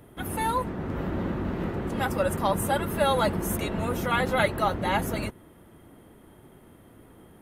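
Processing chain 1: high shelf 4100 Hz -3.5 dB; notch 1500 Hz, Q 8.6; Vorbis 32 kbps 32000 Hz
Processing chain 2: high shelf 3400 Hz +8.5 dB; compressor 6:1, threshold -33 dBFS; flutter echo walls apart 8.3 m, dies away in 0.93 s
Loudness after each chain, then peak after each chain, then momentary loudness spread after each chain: -28.0, -33.5 LUFS; -11.5, -20.0 dBFS; 7, 16 LU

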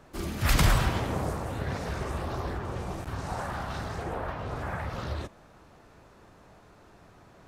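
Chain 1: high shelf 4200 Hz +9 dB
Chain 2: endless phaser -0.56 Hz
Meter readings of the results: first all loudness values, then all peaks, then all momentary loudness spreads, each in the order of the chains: -30.0, -34.5 LUFS; -8.5, -13.0 dBFS; 13, 11 LU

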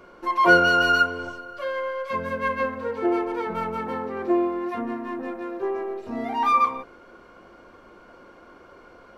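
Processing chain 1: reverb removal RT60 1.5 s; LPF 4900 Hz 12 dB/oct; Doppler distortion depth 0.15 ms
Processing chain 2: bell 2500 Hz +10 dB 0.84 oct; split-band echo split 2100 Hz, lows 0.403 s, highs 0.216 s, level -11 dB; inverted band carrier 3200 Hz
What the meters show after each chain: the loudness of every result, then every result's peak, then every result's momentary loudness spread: -26.0, -20.0 LUFS; -5.0, -2.5 dBFS; 16, 15 LU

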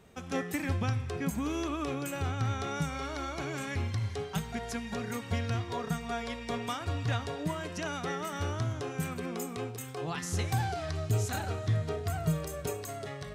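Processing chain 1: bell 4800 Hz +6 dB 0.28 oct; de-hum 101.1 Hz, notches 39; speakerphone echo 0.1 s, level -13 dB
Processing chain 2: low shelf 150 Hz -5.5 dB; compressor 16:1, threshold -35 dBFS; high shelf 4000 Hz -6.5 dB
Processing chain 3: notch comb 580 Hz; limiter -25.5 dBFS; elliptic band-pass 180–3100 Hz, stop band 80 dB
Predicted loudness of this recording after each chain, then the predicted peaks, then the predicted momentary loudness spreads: -34.5, -40.5, -39.0 LUFS; -18.0, -25.0, -23.5 dBFS; 5, 2, 5 LU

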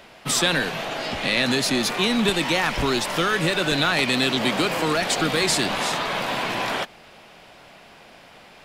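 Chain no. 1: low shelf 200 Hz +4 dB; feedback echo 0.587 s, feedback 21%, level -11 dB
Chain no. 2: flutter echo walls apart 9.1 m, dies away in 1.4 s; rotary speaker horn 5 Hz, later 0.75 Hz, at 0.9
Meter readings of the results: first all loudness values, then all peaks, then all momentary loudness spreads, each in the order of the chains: -21.0, -20.5 LUFS; -5.5, -5.5 dBFS; 7, 6 LU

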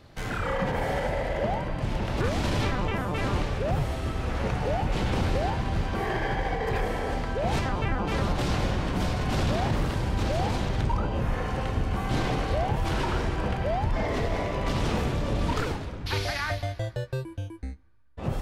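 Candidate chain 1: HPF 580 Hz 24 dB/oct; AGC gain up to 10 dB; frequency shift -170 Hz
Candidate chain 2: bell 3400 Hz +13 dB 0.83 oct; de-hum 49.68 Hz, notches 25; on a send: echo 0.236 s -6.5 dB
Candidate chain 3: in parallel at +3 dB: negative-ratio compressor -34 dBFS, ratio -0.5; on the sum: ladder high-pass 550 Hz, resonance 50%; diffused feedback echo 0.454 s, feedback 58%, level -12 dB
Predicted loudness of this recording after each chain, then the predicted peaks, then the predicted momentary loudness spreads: -23.5, -26.0, -34.5 LUFS; -8.0, -11.5, -19.5 dBFS; 6, 5, 5 LU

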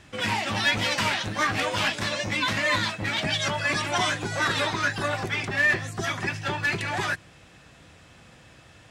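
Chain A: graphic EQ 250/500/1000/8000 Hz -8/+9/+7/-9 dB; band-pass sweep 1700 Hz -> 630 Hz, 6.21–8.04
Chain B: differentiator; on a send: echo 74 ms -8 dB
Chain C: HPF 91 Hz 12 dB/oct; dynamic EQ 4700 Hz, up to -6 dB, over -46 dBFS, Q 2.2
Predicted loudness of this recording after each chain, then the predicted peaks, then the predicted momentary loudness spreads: -27.0, -34.0, -26.0 LUFS; -12.0, -18.5, -11.5 dBFS; 7, 6, 6 LU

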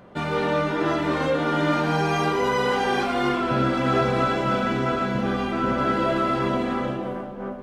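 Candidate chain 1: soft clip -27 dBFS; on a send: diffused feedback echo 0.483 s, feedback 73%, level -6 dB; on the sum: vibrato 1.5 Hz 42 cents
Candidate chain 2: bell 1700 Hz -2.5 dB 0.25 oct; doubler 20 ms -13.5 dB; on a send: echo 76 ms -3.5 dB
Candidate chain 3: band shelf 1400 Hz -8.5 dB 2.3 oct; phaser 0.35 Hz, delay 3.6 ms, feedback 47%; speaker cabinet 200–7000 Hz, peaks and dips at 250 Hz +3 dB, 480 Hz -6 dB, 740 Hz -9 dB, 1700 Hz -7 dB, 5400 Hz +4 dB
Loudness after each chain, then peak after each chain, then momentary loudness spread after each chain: -28.0, -20.5, -27.0 LUFS; -17.0, -6.5, -12.0 dBFS; 2, 4, 6 LU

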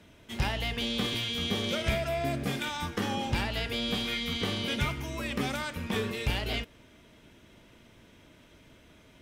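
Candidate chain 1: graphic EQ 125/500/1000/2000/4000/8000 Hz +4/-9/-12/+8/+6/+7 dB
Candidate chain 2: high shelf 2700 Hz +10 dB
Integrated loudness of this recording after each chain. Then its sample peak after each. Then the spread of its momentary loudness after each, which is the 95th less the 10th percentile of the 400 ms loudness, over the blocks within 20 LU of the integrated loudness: -26.5, -27.5 LUFS; -12.5, -11.5 dBFS; 6, 5 LU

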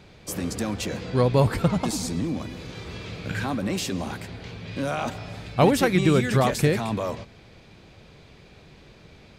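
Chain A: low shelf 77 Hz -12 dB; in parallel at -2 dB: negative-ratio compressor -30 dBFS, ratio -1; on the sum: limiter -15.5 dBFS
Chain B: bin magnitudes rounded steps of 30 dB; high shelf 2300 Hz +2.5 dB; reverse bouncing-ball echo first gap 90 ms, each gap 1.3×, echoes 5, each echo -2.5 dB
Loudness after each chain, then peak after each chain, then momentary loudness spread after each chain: -26.0, -22.5 LUFS; -15.5, -4.5 dBFS; 21, 15 LU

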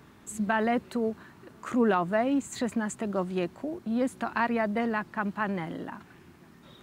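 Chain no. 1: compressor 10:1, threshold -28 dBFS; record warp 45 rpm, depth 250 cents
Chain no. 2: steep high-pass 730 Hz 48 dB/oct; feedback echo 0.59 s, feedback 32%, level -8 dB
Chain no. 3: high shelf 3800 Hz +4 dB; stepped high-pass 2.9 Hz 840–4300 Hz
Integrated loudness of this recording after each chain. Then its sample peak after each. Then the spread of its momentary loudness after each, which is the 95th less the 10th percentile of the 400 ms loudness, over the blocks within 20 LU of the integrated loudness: -34.0, -35.0, -31.0 LUFS; -16.0, -16.0, -10.5 dBFS; 11, 14, 18 LU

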